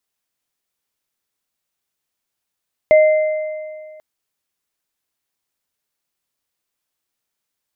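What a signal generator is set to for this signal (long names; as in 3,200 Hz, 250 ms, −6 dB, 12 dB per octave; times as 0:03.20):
inharmonic partials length 1.09 s, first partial 619 Hz, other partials 2,080 Hz, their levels −13 dB, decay 2.02 s, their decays 1.87 s, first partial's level −5.5 dB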